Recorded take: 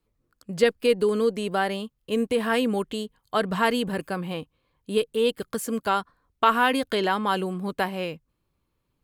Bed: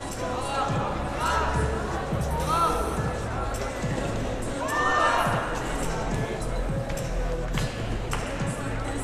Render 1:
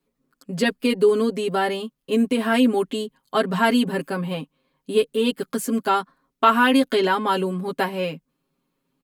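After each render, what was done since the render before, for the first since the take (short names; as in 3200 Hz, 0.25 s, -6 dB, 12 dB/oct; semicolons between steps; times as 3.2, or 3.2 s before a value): resonant low shelf 140 Hz -11 dB, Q 3; comb 7.4 ms, depth 93%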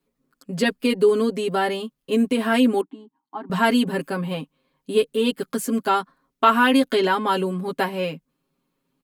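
2.81–3.5 double band-pass 520 Hz, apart 1.5 oct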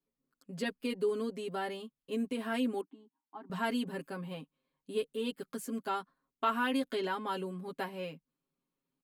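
gain -14.5 dB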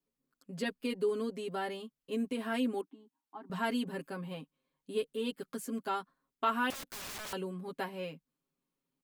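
6.7–7.33 wrapped overs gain 38.5 dB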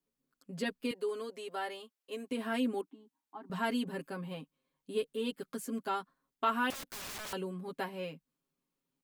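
0.91–2.31 HPF 470 Hz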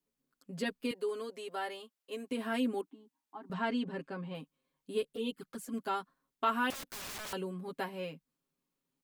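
3.53–4.35 air absorption 110 m; 5.03–5.74 envelope flanger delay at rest 6.5 ms, full sweep at -31.5 dBFS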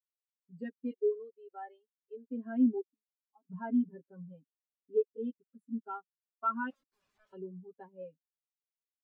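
sample leveller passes 2; spectral expander 2.5:1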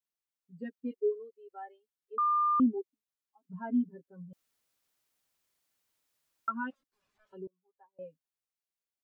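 2.18–2.6 bleep 1200 Hz -24 dBFS; 4.33–6.48 room tone; 7.47–7.99 ladder band-pass 1100 Hz, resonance 40%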